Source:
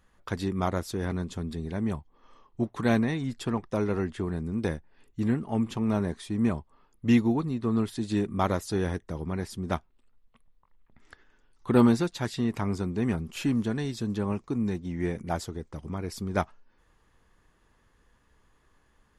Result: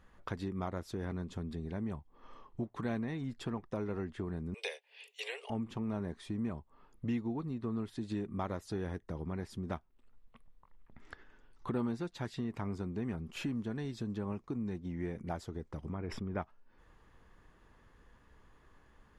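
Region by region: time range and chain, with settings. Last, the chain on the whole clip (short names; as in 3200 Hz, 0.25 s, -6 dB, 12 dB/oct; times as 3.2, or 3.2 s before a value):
4.54–5.5 steep high-pass 420 Hz 96 dB/oct + resonant high shelf 1900 Hz +11.5 dB, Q 3
15.92–16.42 polynomial smoothing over 25 samples + sustainer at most 49 dB/s
whole clip: high shelf 4500 Hz -10.5 dB; compressor 2.5:1, threshold -44 dBFS; gain +3 dB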